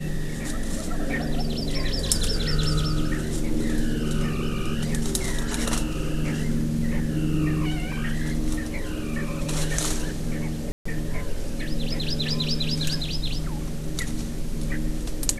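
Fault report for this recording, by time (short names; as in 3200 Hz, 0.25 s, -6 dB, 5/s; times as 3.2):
10.72–10.86 gap 0.135 s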